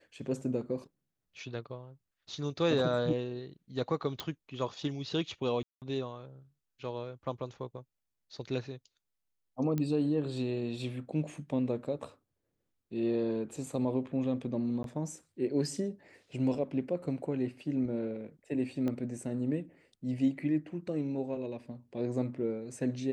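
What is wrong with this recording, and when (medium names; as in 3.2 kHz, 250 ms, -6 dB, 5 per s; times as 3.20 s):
4.20 s: pop -21 dBFS
5.63–5.82 s: dropout 188 ms
9.78 s: pop -20 dBFS
14.83–14.84 s: dropout 12 ms
18.88 s: pop -23 dBFS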